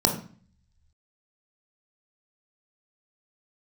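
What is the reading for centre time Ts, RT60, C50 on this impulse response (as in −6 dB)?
20 ms, 0.45 s, 8.0 dB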